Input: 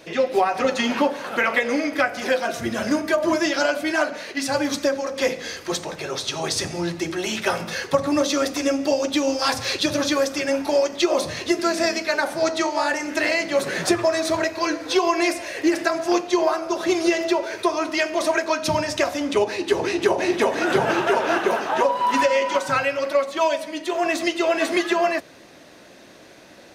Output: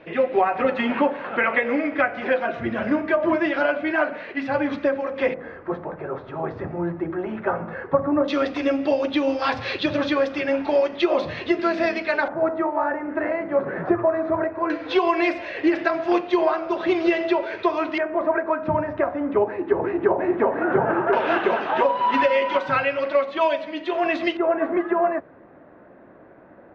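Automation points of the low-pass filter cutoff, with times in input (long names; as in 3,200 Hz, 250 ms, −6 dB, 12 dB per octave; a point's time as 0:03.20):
low-pass filter 24 dB per octave
2,600 Hz
from 0:05.34 1,500 Hz
from 0:08.28 3,300 Hz
from 0:12.28 1,500 Hz
from 0:14.70 3,300 Hz
from 0:17.98 1,600 Hz
from 0:21.13 3,400 Hz
from 0:24.37 1,500 Hz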